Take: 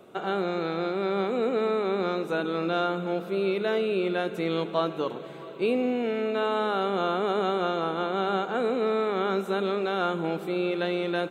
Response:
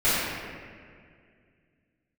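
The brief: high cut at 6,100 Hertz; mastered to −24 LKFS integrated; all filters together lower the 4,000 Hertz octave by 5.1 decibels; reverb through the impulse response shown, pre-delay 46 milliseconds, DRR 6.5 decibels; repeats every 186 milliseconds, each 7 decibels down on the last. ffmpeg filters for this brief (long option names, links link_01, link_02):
-filter_complex "[0:a]lowpass=6100,equalizer=frequency=4000:width_type=o:gain=-6,aecho=1:1:186|372|558|744|930:0.447|0.201|0.0905|0.0407|0.0183,asplit=2[link_01][link_02];[1:a]atrim=start_sample=2205,adelay=46[link_03];[link_02][link_03]afir=irnorm=-1:irlink=0,volume=-24dB[link_04];[link_01][link_04]amix=inputs=2:normalize=0,volume=2dB"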